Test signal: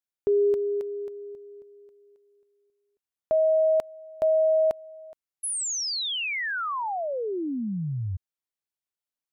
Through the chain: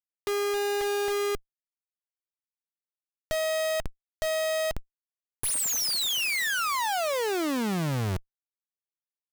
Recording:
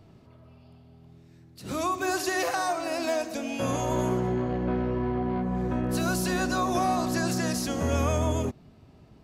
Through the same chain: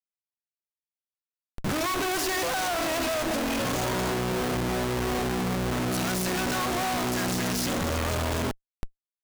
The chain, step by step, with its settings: Chebyshev shaper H 5 -39 dB, 6 -37 dB, 8 -13 dB, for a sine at -14 dBFS; Schmitt trigger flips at -40 dBFS

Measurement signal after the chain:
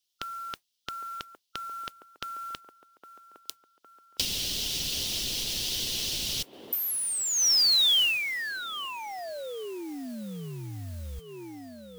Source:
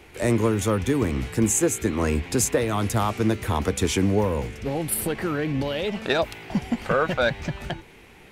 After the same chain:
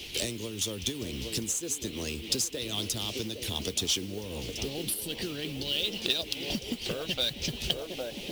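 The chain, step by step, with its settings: FFT filter 410 Hz 0 dB, 1.3 kHz -14 dB, 3 kHz +8 dB; on a send: feedback echo behind a band-pass 810 ms, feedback 53%, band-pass 550 Hz, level -8 dB; on the sum: compression 12:1, threshold -34 dBFS; harmonic-percussive split harmonic -6 dB; high-order bell 4.1 kHz +8.5 dB 1.3 oct; modulation noise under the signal 17 dB; trim +4.5 dB

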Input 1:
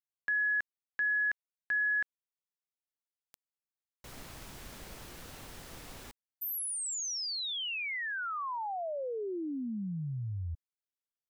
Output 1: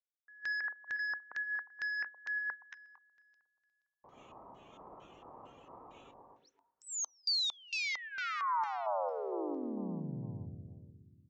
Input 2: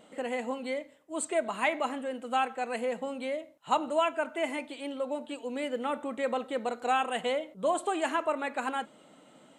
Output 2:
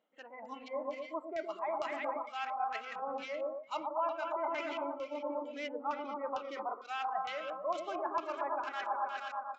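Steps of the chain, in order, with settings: local Wiener filter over 9 samples; high-pass 520 Hz 6 dB/octave; expander -48 dBFS, range -10 dB; on a send: delay with an opening low-pass 119 ms, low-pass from 750 Hz, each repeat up 1 oct, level -3 dB; on the sum: dynamic bell 2 kHz, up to +4 dB, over -46 dBFS, Q 3; reverse; compression 8:1, threshold -40 dBFS; reverse; LFO low-pass square 2.2 Hz 1–5.4 kHz; spectral noise reduction 15 dB; resampled via 16 kHz; trim +5 dB

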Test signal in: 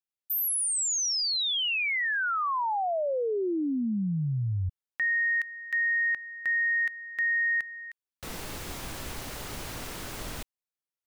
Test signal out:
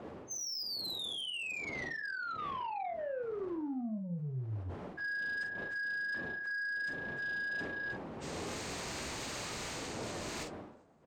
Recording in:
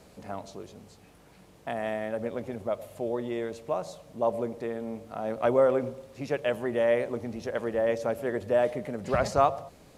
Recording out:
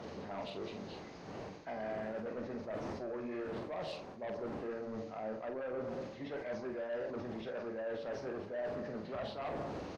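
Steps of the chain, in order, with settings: knee-point frequency compression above 1.3 kHz 1.5:1; wind noise 500 Hz -43 dBFS; high-pass 150 Hz 6 dB/octave; dynamic bell 1.8 kHz, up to -5 dB, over -39 dBFS, Q 1.4; reverse; compression 6:1, threshold -40 dBFS; reverse; flange 1.4 Hz, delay 8.2 ms, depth 6.1 ms, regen -50%; in parallel at -10.5 dB: sine folder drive 10 dB, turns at -33.5 dBFS; on the sum: doubling 46 ms -7 dB; decay stretcher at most 77 dB/s

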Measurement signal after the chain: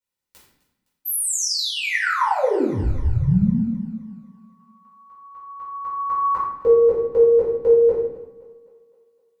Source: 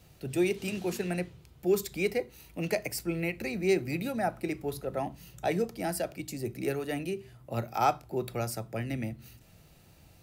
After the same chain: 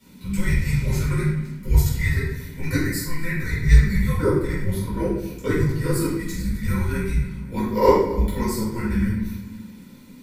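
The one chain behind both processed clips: comb of notches 500 Hz; simulated room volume 300 m³, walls mixed, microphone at 4.2 m; dynamic bell 3.5 kHz, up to -7 dB, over -46 dBFS, Q 2.8; frequency shift -330 Hz; on a send: thinning echo 257 ms, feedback 56%, high-pass 230 Hz, level -20 dB; on the sum: trim -1 dB

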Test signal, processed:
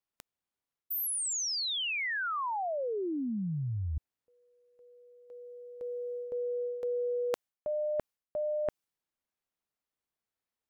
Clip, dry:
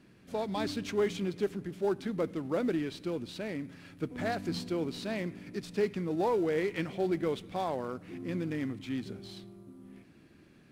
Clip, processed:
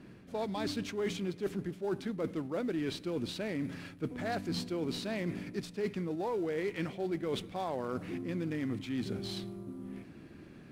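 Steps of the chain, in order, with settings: reverse; compression 6:1, threshold -40 dBFS; reverse; tape noise reduction on one side only decoder only; trim +7.5 dB

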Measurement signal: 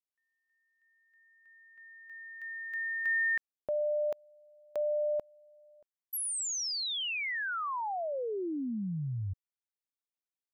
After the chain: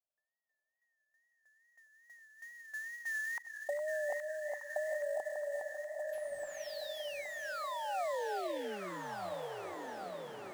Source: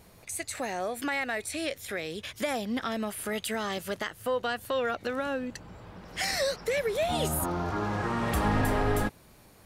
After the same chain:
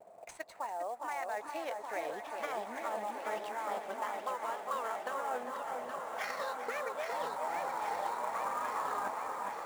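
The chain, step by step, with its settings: transient shaper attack +10 dB, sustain -4 dB; dynamic bell 5.2 kHz, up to +8 dB, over -48 dBFS, Q 0.77; auto-wah 640–1300 Hz, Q 6.3, up, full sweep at -18 dBFS; high-pass 170 Hz 6 dB/octave; reverse; compression 10:1, threshold -47 dBFS; reverse; wow and flutter 79 cents; echo whose repeats swap between lows and highs 411 ms, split 1.3 kHz, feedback 82%, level -3.5 dB; in parallel at -4.5 dB: sample-rate reducer 8.5 kHz, jitter 20%; on the sum: echo that smears into a reverb 1460 ms, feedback 46%, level -9.5 dB; modulated delay 396 ms, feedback 68%, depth 62 cents, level -14 dB; trim +7.5 dB

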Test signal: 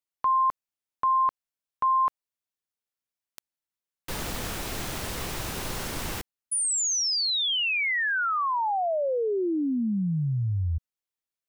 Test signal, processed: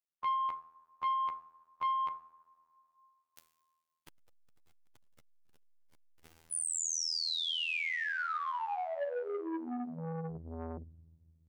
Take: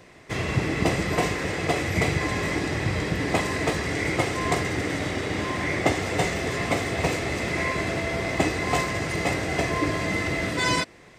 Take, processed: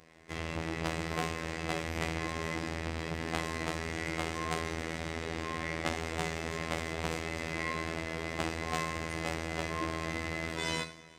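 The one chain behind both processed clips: two-slope reverb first 0.64 s, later 2.8 s, from -16 dB, DRR 8 dB; robot voice 81.5 Hz; transformer saturation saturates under 1.9 kHz; trim -7.5 dB

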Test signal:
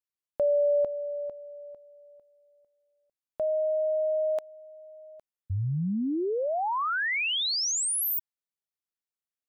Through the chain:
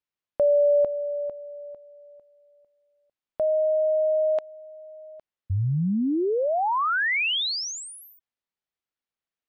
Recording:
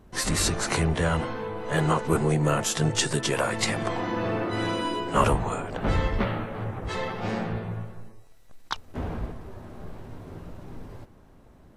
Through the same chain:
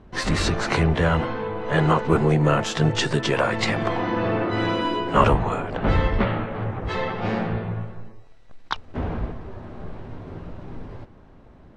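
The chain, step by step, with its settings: low-pass 3.9 kHz 12 dB/octave; trim +4.5 dB

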